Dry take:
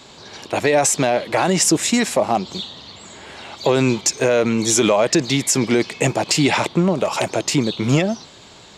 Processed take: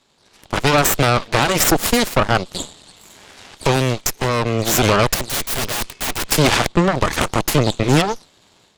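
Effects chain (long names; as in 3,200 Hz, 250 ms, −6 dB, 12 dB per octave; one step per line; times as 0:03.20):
0:02.54–0:04.07: high-shelf EQ 3,200 Hz +4 dB
harmonic generator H 3 −13 dB, 4 −25 dB, 7 −31 dB, 8 −17 dB, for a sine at −3 dBFS
automatic gain control gain up to 12 dB
0:05.14–0:06.32: wrap-around overflow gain 16.5 dB
level −1 dB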